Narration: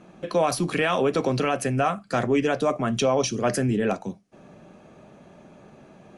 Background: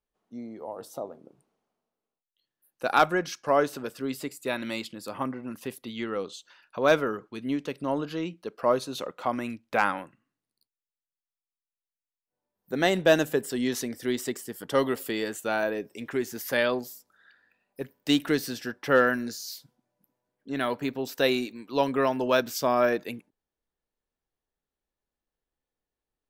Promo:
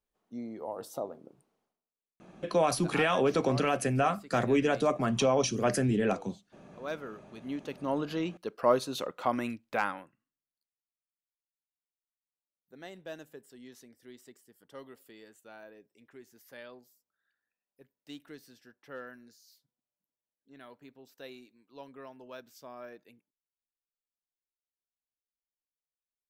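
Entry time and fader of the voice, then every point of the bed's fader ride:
2.20 s, −4.0 dB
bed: 0:01.64 −0.5 dB
0:01.91 −17.5 dB
0:06.80 −17.5 dB
0:08.07 −1 dB
0:09.47 −1 dB
0:10.89 −23 dB

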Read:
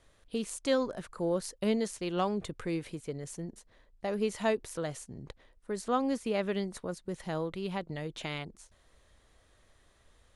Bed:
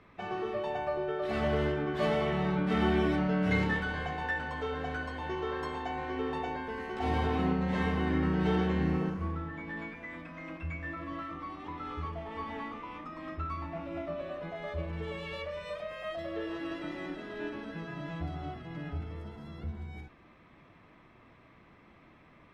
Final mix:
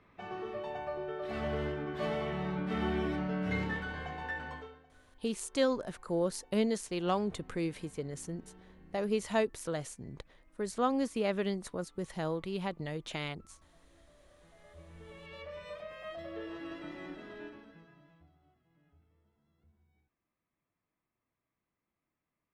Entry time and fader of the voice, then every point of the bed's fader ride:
4.90 s, −0.5 dB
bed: 0:04.54 −5.5 dB
0:04.88 −29 dB
0:14.10 −29 dB
0:15.56 −5.5 dB
0:17.31 −5.5 dB
0:18.39 −30.5 dB

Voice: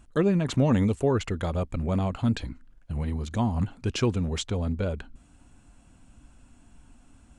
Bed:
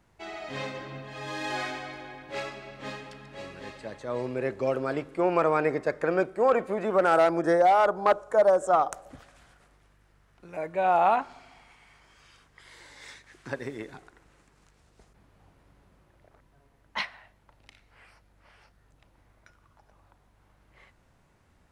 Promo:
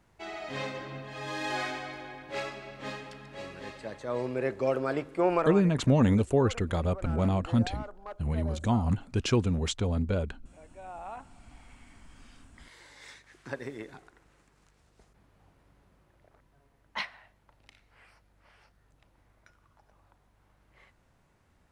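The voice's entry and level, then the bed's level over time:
5.30 s, −0.5 dB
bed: 0:05.34 −0.5 dB
0:05.73 −21 dB
0:11.05 −21 dB
0:11.63 −3 dB

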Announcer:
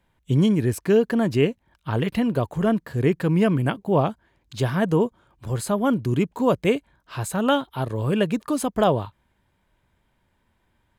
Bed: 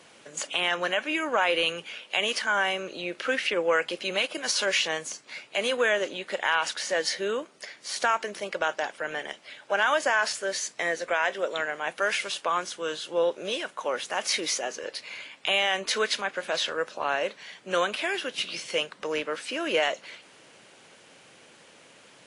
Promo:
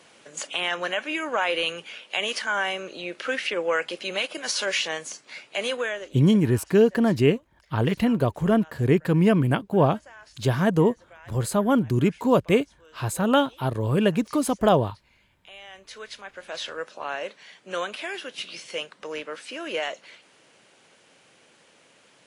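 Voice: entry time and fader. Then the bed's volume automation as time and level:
5.85 s, +0.5 dB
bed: 0:05.71 −0.5 dB
0:06.56 −23.5 dB
0:15.38 −23.5 dB
0:16.70 −4 dB

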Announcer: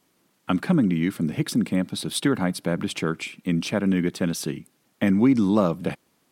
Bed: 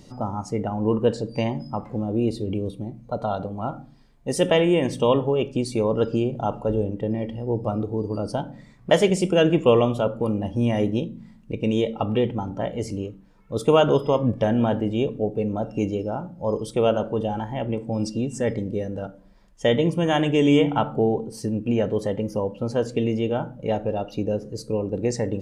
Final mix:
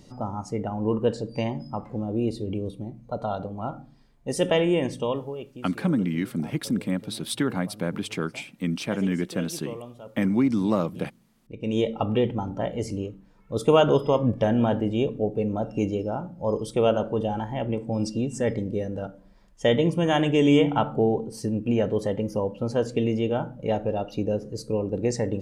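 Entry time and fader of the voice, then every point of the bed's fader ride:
5.15 s, −3.5 dB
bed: 0:04.83 −3 dB
0:05.75 −20.5 dB
0:11.27 −20.5 dB
0:11.80 −1 dB

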